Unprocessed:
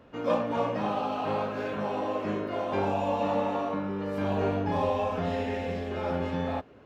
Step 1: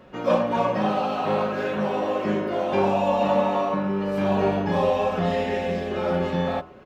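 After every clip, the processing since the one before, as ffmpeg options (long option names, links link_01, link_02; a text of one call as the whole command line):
ffmpeg -i in.wav -af "aecho=1:1:5.4:0.52,bandreject=frequency=80.99:width_type=h:width=4,bandreject=frequency=161.98:width_type=h:width=4,bandreject=frequency=242.97:width_type=h:width=4,bandreject=frequency=323.96:width_type=h:width=4,bandreject=frequency=404.95:width_type=h:width=4,bandreject=frequency=485.94:width_type=h:width=4,bandreject=frequency=566.93:width_type=h:width=4,bandreject=frequency=647.92:width_type=h:width=4,bandreject=frequency=728.91:width_type=h:width=4,bandreject=frequency=809.9:width_type=h:width=4,bandreject=frequency=890.89:width_type=h:width=4,bandreject=frequency=971.88:width_type=h:width=4,bandreject=frequency=1052.87:width_type=h:width=4,bandreject=frequency=1133.86:width_type=h:width=4,bandreject=frequency=1214.85:width_type=h:width=4,bandreject=frequency=1295.84:width_type=h:width=4,bandreject=frequency=1376.83:width_type=h:width=4,bandreject=frequency=1457.82:width_type=h:width=4,volume=5.5dB" out.wav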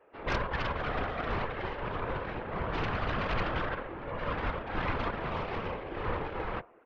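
ffmpeg -i in.wav -af "highpass=frequency=410:width_type=q:width=0.5412,highpass=frequency=410:width_type=q:width=1.307,lowpass=frequency=2600:width_type=q:width=0.5176,lowpass=frequency=2600:width_type=q:width=0.7071,lowpass=frequency=2600:width_type=q:width=1.932,afreqshift=-53,aeval=exprs='0.376*(cos(1*acos(clip(val(0)/0.376,-1,1)))-cos(1*PI/2))+0.168*(cos(3*acos(clip(val(0)/0.376,-1,1)))-cos(3*PI/2))+0.0335*(cos(7*acos(clip(val(0)/0.376,-1,1)))-cos(7*PI/2))+0.0944*(cos(8*acos(clip(val(0)/0.376,-1,1)))-cos(8*PI/2))':channel_layout=same,afftfilt=real='hypot(re,im)*cos(2*PI*random(0))':imag='hypot(re,im)*sin(2*PI*random(1))':win_size=512:overlap=0.75,volume=-4dB" out.wav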